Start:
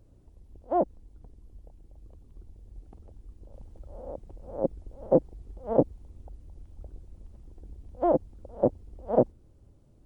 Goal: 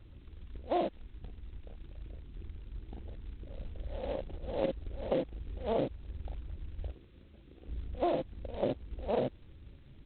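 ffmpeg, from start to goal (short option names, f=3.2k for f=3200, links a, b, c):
-filter_complex "[0:a]asettb=1/sr,asplit=3[a][b][c];[a]atrim=end=6.874[d];[b]atrim=start=6.87:end=7.68,asetpts=PTS-STARTPTS,afade=t=in:d=0.004:c=qsin,afade=t=out:st=0.806:d=0.004:c=qsin,highpass=f=290:p=1[e];[c]atrim=start=7.676[f];[d][e]acrossfade=d=0.004:c1=hsin:c2=qsin[g];[g][f]acrossfade=d=0.004:c1=qsin:c2=hsin,asplit=2[h][i];[i]aecho=0:1:37|52:0.562|0.501[j];[h][j]amix=inputs=2:normalize=0,alimiter=limit=-14.5dB:level=0:latency=1:release=158,lowpass=f=1.3k:p=1,acompressor=threshold=-34dB:ratio=2.5,afftdn=nr=29:nf=-59,volume=3dB" -ar 8000 -c:a adpcm_g726 -b:a 16k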